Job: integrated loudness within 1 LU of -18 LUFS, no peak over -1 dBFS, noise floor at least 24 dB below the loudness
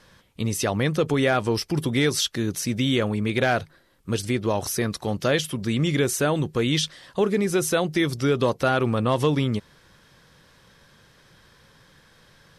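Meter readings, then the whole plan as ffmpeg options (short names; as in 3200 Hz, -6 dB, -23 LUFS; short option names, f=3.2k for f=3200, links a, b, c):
loudness -24.0 LUFS; peak -11.0 dBFS; loudness target -18.0 LUFS
-> -af "volume=6dB"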